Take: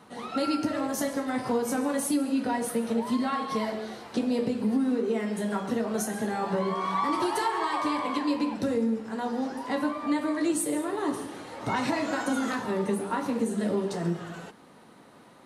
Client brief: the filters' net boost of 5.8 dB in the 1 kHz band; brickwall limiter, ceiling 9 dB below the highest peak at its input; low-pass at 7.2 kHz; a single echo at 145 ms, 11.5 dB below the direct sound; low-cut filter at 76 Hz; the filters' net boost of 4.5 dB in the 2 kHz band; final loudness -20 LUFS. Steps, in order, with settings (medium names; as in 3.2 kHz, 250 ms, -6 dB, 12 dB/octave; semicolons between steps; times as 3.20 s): high-pass 76 Hz; low-pass 7.2 kHz; peaking EQ 1 kHz +6 dB; peaking EQ 2 kHz +3.5 dB; peak limiter -20 dBFS; delay 145 ms -11.5 dB; trim +9 dB